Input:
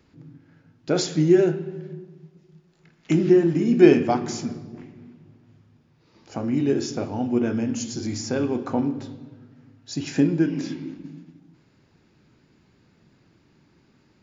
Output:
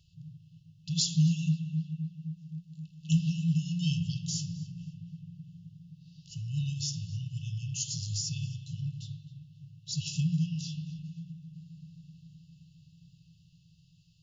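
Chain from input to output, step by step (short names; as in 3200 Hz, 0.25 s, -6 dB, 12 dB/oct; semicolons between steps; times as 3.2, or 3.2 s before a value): FFT band-reject 180–2600 Hz; on a send: darkening echo 0.262 s, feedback 78%, low-pass 2100 Hz, level -12.5 dB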